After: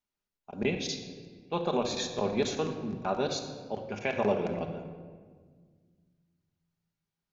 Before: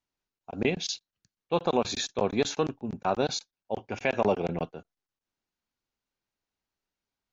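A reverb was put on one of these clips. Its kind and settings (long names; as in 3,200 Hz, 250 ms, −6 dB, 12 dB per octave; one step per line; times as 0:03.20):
rectangular room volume 2,000 cubic metres, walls mixed, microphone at 1.3 metres
level −4.5 dB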